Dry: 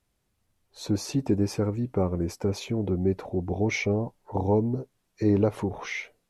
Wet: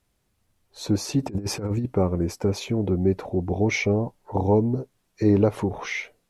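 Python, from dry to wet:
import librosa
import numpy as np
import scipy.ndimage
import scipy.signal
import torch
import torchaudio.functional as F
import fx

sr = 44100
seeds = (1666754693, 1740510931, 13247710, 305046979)

y = fx.over_compress(x, sr, threshold_db=-29.0, ratio=-0.5, at=(1.23, 1.86))
y = F.gain(torch.from_numpy(y), 3.5).numpy()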